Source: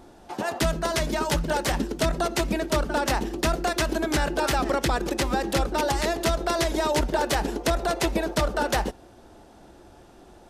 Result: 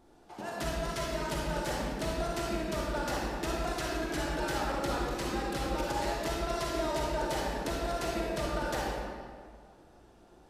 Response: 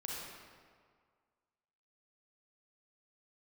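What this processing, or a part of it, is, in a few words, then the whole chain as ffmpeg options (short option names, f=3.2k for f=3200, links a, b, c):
stairwell: -filter_complex "[1:a]atrim=start_sample=2205[a];[0:a][a]afir=irnorm=-1:irlink=0,volume=-8.5dB"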